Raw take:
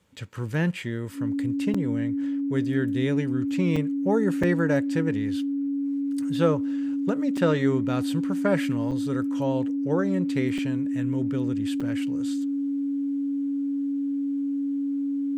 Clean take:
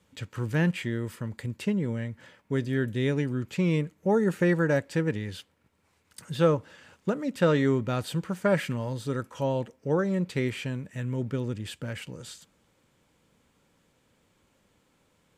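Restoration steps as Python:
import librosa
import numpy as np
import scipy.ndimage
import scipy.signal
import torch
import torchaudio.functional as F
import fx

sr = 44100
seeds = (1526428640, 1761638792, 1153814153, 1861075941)

y = fx.notch(x, sr, hz=280.0, q=30.0)
y = fx.fix_interpolate(y, sr, at_s=(1.74, 3.76, 4.43, 7.37, 8.91, 10.58, 11.8), length_ms=5.1)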